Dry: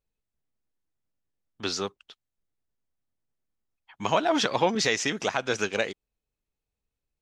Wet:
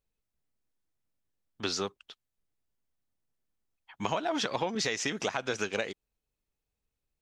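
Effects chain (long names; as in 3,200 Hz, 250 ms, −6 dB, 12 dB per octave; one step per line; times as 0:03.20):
downward compressor, threshold −27 dBFS, peak gain reduction 10 dB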